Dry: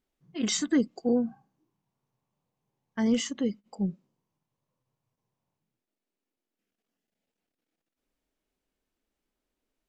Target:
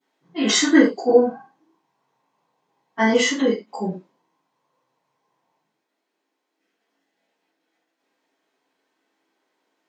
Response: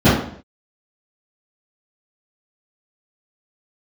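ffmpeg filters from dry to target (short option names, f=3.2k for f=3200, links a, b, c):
-filter_complex "[0:a]highpass=940[a];[1:a]atrim=start_sample=2205,afade=t=out:st=0.22:d=0.01,atrim=end_sample=10143,asetrate=57330,aresample=44100[b];[a][b]afir=irnorm=-1:irlink=0,volume=-5.5dB"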